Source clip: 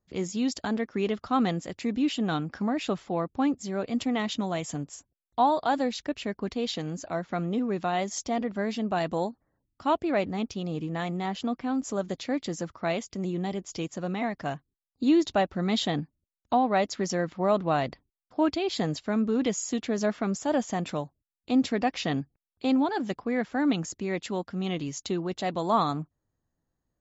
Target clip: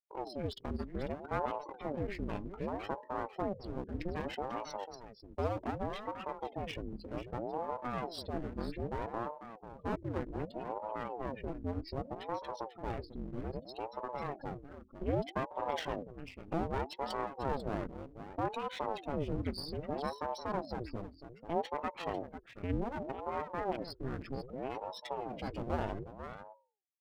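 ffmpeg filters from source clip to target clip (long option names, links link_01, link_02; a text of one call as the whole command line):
ffmpeg -i in.wav -filter_complex "[0:a]afftdn=noise_reduction=35:noise_floor=-35,bandreject=frequency=60:width_type=h:width=6,bandreject=frequency=120:width_type=h:width=6,bandreject=frequency=180:width_type=h:width=6,bandreject=frequency=240:width_type=h:width=6,bandreject=frequency=300:width_type=h:width=6,bandreject=frequency=360:width_type=h:width=6,bandreject=frequency=420:width_type=h:width=6,asplit=2[link_01][link_02];[link_02]acompressor=threshold=-39dB:ratio=5,volume=-0.5dB[link_03];[link_01][link_03]amix=inputs=2:normalize=0,asetrate=30296,aresample=44100,atempo=1.45565,aeval=exprs='clip(val(0),-1,0.0188)':channel_layout=same,aecho=1:1:494:0.282,aeval=exprs='val(0)*sin(2*PI*420*n/s+420*0.8/0.64*sin(2*PI*0.64*n/s))':channel_layout=same,volume=-6.5dB" out.wav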